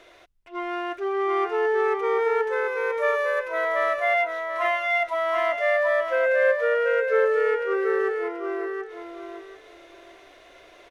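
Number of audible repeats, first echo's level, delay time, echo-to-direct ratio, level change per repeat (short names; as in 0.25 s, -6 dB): 3, -5.0 dB, 0.734 s, -5.0 dB, -13.5 dB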